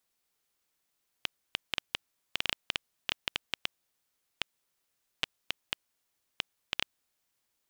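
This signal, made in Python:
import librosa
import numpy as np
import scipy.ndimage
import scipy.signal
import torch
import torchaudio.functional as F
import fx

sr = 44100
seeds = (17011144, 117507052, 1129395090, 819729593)

y = fx.geiger_clicks(sr, seeds[0], length_s=5.78, per_s=4.7, level_db=-10.0)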